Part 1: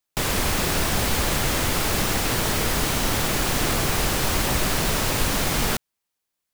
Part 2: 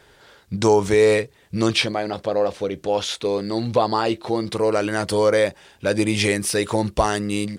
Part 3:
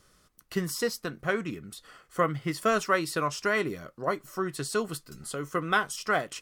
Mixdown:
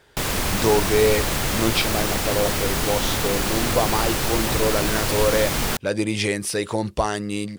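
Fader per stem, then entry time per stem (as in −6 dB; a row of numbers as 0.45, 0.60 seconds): −0.5 dB, −3.0 dB, muted; 0.00 s, 0.00 s, muted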